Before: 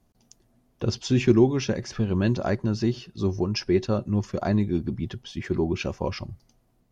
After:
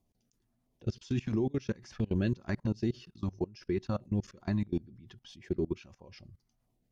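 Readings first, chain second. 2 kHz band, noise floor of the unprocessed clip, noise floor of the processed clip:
−11.0 dB, −66 dBFS, −77 dBFS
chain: output level in coarse steps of 24 dB
auto-filter notch saw down 1.5 Hz 340–1,700 Hz
level −4 dB

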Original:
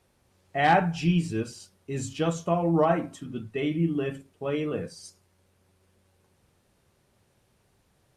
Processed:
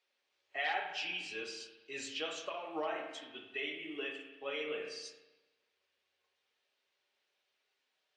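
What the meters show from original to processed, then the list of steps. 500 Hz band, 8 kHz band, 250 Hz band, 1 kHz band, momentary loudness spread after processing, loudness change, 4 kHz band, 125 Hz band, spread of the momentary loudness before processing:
−13.5 dB, −8.0 dB, −22.0 dB, −15.0 dB, 10 LU, −12.5 dB, −0.5 dB, −38.5 dB, 15 LU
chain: meter weighting curve D
noise reduction from a noise print of the clip's start 9 dB
three-way crossover with the lows and the highs turned down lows −23 dB, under 380 Hz, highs −19 dB, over 6,400 Hz
downward compressor 2.5 to 1, threshold −31 dBFS, peak gain reduction 11 dB
notch comb filter 170 Hz
flanger 1.2 Hz, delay 1.5 ms, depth 7.5 ms, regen +56%
spring reverb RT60 1.1 s, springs 33/55 ms, chirp 65 ms, DRR 4 dB
level −2 dB

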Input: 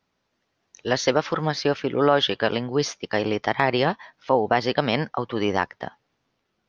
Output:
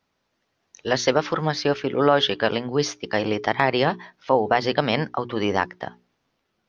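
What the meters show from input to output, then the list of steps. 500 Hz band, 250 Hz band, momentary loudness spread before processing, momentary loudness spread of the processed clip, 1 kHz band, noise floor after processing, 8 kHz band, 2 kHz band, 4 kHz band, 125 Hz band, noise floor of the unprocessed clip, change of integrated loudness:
+0.5 dB, +0.5 dB, 7 LU, 7 LU, +1.0 dB, −75 dBFS, can't be measured, +1.0 dB, +1.0 dB, +0.5 dB, −75 dBFS, +1.0 dB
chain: mains-hum notches 60/120/180/240/300/360/420 Hz
level +1 dB

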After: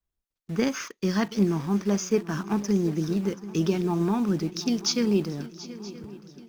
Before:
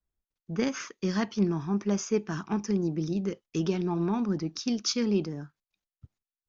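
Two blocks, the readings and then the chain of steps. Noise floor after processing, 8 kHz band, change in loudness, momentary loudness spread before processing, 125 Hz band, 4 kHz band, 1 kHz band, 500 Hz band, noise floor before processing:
below −85 dBFS, can't be measured, +3.5 dB, 5 LU, +3.5 dB, +3.5 dB, +3.5 dB, +3.5 dB, below −85 dBFS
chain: in parallel at −7 dB: bit reduction 7 bits
on the sum: feedback echo with a long and a short gap by turns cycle 974 ms, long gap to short 3 to 1, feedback 46%, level −17 dB

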